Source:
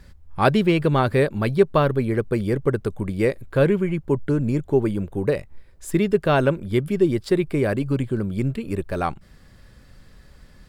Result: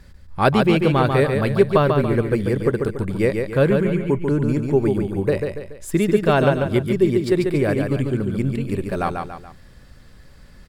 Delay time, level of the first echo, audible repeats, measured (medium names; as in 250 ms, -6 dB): 142 ms, -5.0 dB, 3